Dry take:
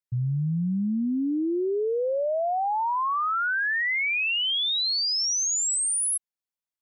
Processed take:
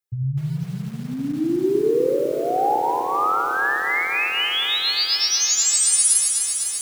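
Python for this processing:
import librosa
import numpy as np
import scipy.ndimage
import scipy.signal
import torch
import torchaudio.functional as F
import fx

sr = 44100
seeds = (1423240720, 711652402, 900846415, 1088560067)

p1 = scipy.signal.sosfilt(scipy.signal.butter(2, 57.0, 'highpass', fs=sr, output='sos'), x)
p2 = fx.high_shelf(p1, sr, hz=3000.0, db=-8.0)
p3 = fx.notch(p2, sr, hz=890.0, q=12.0)
p4 = p3 + fx.echo_feedback(p3, sr, ms=108, feedback_pct=31, wet_db=-5.0, dry=0)
p5 = fx.rider(p4, sr, range_db=10, speed_s=0.5)
p6 = fx.high_shelf(p5, sr, hz=6500.0, db=10.0)
p7 = fx.hum_notches(p6, sr, base_hz=60, count=7)
p8 = p7 + 0.74 * np.pad(p7, (int(2.4 * sr / 1000.0), 0))[:len(p7)]
p9 = fx.echo_crushed(p8, sr, ms=251, feedback_pct=80, bits=7, wet_db=-6.0)
y = p9 * librosa.db_to_amplitude(1.5)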